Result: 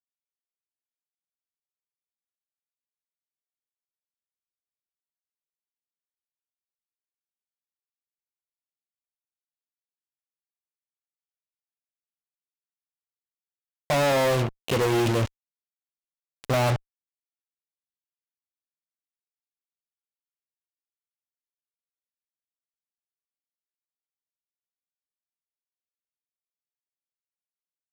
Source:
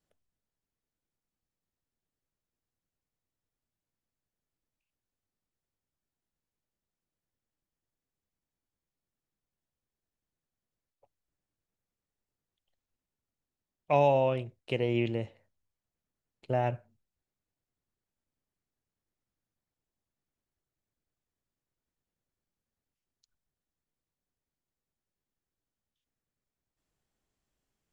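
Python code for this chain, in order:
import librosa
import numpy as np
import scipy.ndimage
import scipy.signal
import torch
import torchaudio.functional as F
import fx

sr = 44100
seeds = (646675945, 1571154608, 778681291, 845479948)

y = fx.fuzz(x, sr, gain_db=49.0, gate_db=-43.0)
y = F.gain(torch.from_numpy(y), -7.0).numpy()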